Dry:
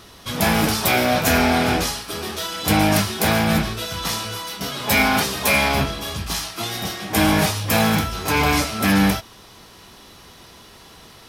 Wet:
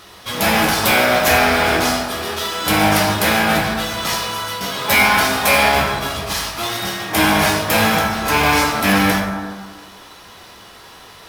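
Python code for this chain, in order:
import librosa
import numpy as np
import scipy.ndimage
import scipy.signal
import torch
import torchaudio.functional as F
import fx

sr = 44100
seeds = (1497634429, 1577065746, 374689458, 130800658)

p1 = fx.low_shelf(x, sr, hz=370.0, db=-10.0)
p2 = fx.sample_hold(p1, sr, seeds[0], rate_hz=12000.0, jitter_pct=0)
p3 = p1 + F.gain(torch.from_numpy(p2), -7.0).numpy()
p4 = fx.rev_plate(p3, sr, seeds[1], rt60_s=1.6, hf_ratio=0.35, predelay_ms=0, drr_db=-0.5)
y = F.gain(torch.from_numpy(p4), 1.0).numpy()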